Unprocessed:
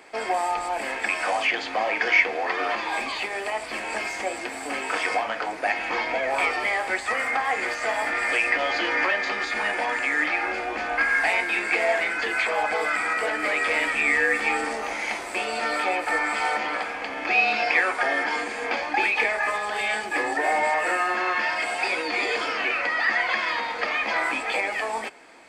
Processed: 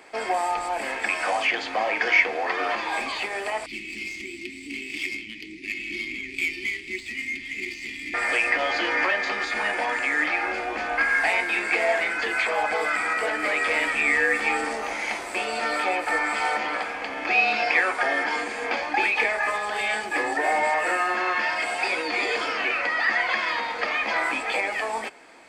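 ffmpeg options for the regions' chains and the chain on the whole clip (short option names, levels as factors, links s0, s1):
-filter_complex "[0:a]asettb=1/sr,asplit=3[s0][s1][s2];[s0]atrim=end=3.664[s3];[s1]atrim=start=3.66:end=8.14,asetpts=PTS-STARTPTS,afade=t=in:d=0.004:c=qsin,afade=t=out:st=4.476:d=0.004:c=qsin,asuperstop=centerf=880:order=20:qfactor=0.53,adynamicsmooth=sensitivity=5:basefreq=4100[s4];[s2]atrim=start=8.136[s5];[s3][s4]acrossfade=d=0.004:c1=hsin:c2=qsin[s6];[s6][s5]acrossfade=d=0.004:c1=qsin:c2=hsin"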